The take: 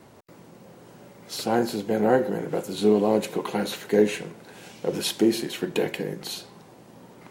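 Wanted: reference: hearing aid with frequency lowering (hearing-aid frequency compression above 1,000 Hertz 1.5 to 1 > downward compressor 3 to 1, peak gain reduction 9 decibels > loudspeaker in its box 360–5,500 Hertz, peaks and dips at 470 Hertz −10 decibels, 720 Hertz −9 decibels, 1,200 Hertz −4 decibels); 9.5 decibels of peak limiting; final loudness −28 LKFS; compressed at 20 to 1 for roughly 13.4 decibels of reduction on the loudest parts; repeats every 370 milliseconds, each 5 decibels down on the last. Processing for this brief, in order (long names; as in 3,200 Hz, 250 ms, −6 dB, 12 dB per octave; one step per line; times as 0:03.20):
downward compressor 20 to 1, threshold −27 dBFS
brickwall limiter −25 dBFS
repeating echo 370 ms, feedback 56%, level −5 dB
hearing-aid frequency compression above 1,000 Hz 1.5 to 1
downward compressor 3 to 1, threshold −39 dBFS
loudspeaker in its box 360–5,500 Hz, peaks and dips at 470 Hz −10 dB, 720 Hz −9 dB, 1,200 Hz −4 dB
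level +17 dB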